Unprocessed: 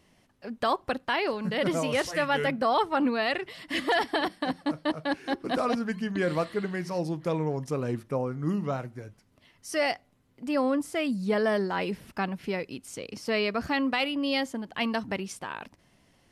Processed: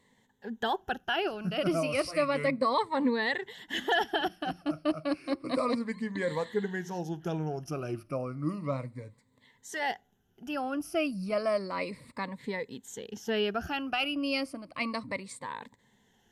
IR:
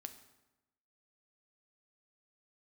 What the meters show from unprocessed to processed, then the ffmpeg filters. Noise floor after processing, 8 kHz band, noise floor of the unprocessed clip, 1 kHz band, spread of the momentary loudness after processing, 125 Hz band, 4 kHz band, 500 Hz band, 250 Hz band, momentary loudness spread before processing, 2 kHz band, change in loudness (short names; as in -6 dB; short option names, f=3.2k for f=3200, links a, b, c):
-69 dBFS, -3.5 dB, -65 dBFS, -3.0 dB, 12 LU, -3.5 dB, -2.0 dB, -3.0 dB, -3.5 dB, 11 LU, -3.0 dB, -3.0 dB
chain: -af "afftfilt=real='re*pow(10,15/40*sin(2*PI*(1*log(max(b,1)*sr/1024/100)/log(2)-(-0.32)*(pts-256)/sr)))':imag='im*pow(10,15/40*sin(2*PI*(1*log(max(b,1)*sr/1024/100)/log(2)-(-0.32)*(pts-256)/sr)))':win_size=1024:overlap=0.75,volume=-5.5dB"